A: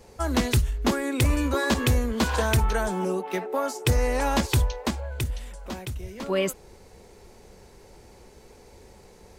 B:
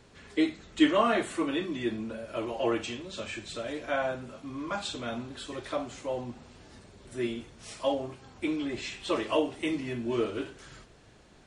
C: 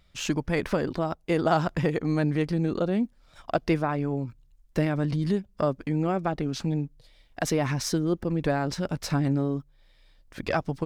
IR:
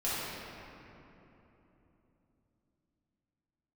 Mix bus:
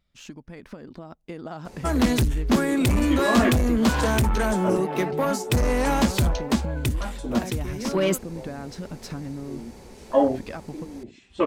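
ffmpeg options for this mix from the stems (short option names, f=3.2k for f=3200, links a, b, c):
-filter_complex "[0:a]asoftclip=type=tanh:threshold=-22dB,adelay=1650,volume=-2.5dB[a];[1:a]afwtdn=0.0178,adelay=2300,volume=3dB[b];[2:a]acompressor=threshold=-28dB:ratio=4,volume=-12dB,asplit=2[c][d];[d]apad=whole_len=607036[e];[b][e]sidechaincompress=threshold=-58dB:ratio=16:attack=8.4:release=502[f];[a][f][c]amix=inputs=3:normalize=0,equalizer=f=230:t=o:w=0.59:g=6.5,dynaudnorm=f=280:g=9:m=7dB"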